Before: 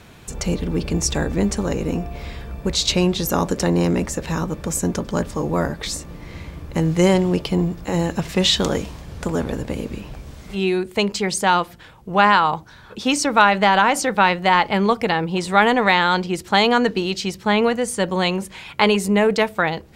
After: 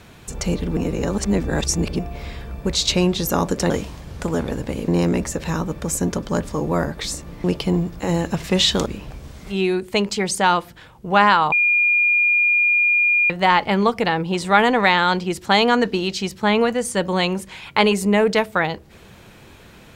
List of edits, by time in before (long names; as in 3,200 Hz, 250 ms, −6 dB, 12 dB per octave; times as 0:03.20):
0:00.77–0:01.99: reverse
0:06.26–0:07.29: remove
0:08.71–0:09.89: move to 0:03.70
0:12.55–0:14.33: beep over 2,420 Hz −13.5 dBFS